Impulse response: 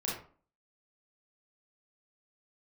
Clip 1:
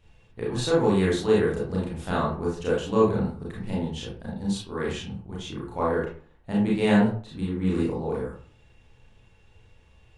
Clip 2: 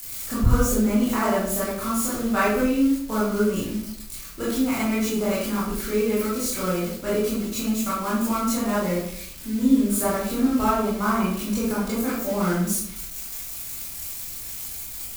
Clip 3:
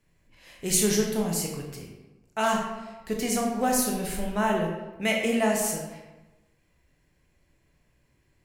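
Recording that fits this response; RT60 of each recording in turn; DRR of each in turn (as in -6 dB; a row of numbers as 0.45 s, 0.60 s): 1; 0.45 s, 0.65 s, 1.1 s; -6.0 dB, -9.0 dB, 0.0 dB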